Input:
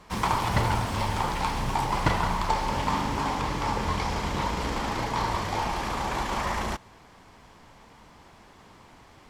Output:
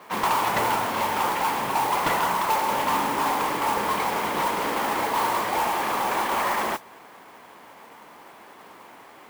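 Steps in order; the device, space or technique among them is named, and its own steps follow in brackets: carbon microphone (BPF 330–2900 Hz; soft clip -25 dBFS, distortion -13 dB; modulation noise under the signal 13 dB); gain +7.5 dB

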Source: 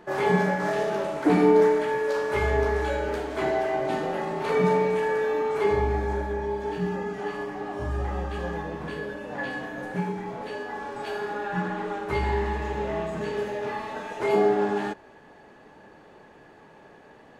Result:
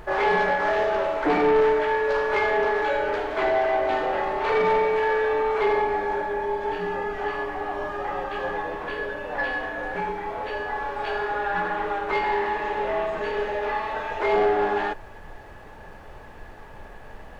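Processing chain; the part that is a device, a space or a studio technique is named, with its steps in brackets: aircraft cabin announcement (BPF 490–3300 Hz; soft clip -21.5 dBFS, distortion -15 dB; brown noise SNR 18 dB); gain +7 dB

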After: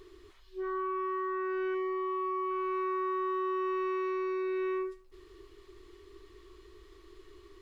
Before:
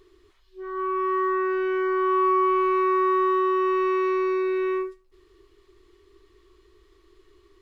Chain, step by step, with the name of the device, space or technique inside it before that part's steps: 1.74–2.51 notch 1500 Hz, Q 6.6; serial compression, peaks first (compressor, threshold -31 dBFS, peak gain reduction 12.5 dB; compressor 1.5:1, threshold -39 dBFS, peak gain reduction 3.5 dB); gain +3 dB

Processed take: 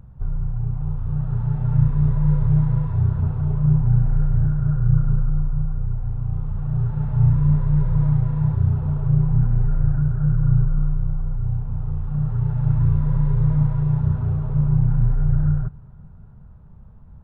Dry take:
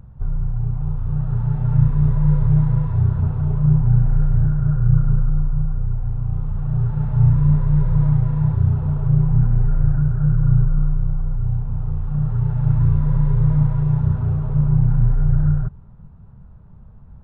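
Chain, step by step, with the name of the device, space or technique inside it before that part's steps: compressed reverb return (on a send at -11 dB: reverb RT60 2.4 s, pre-delay 31 ms + compressor, threshold -29 dBFS, peak gain reduction 18.5 dB); on the sum: gain -2 dB

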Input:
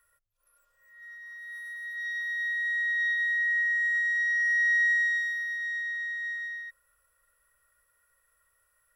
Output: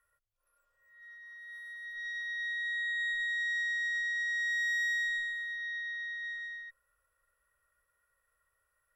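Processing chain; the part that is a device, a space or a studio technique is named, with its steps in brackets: tube preamp driven hard (tube stage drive 27 dB, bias 0.7; high shelf 3500 Hz -8 dB)

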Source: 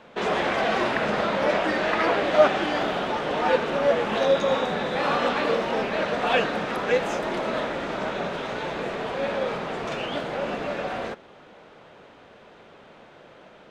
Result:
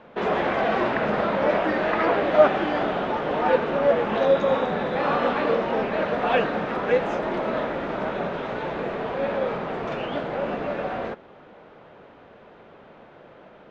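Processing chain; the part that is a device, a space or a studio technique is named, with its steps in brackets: through cloth (LPF 7000 Hz 12 dB/oct; high shelf 3600 Hz -16 dB); gain +2 dB

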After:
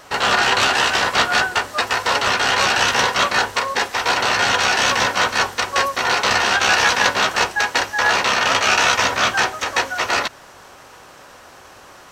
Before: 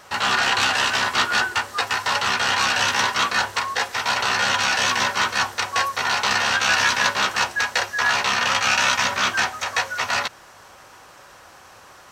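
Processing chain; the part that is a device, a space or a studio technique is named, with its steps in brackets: octave pedal (harmoniser -12 st -6 dB); gain +2.5 dB

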